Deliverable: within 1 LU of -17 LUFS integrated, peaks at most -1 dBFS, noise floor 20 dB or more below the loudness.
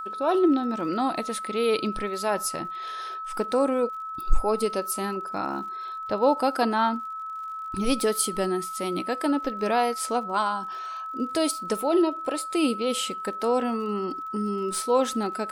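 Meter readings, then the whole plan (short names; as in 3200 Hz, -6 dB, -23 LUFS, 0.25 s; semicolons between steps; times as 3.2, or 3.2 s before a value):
ticks 52/s; steady tone 1300 Hz; tone level -32 dBFS; loudness -26.5 LUFS; peak -7.0 dBFS; loudness target -17.0 LUFS
-> de-click; notch 1300 Hz, Q 30; gain +9.5 dB; limiter -1 dBFS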